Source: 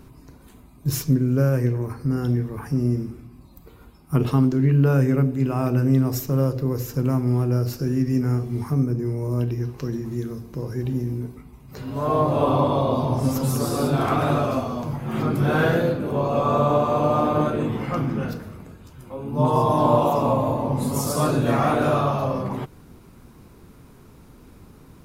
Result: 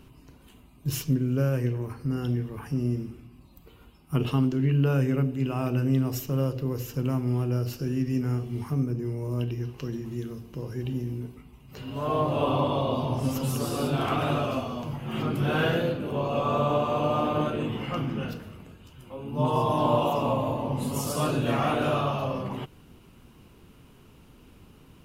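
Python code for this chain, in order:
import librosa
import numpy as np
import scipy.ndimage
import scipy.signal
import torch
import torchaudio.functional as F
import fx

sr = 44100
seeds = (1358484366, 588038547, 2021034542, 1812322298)

y = fx.peak_eq(x, sr, hz=2900.0, db=13.0, octaves=0.37)
y = y * 10.0 ** (-5.5 / 20.0)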